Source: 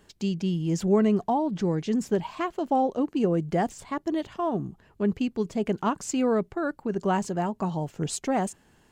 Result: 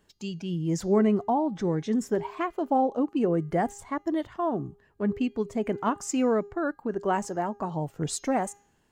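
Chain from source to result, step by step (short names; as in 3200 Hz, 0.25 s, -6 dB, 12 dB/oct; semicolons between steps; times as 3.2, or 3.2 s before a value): spectral noise reduction 8 dB; de-hum 405.7 Hz, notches 17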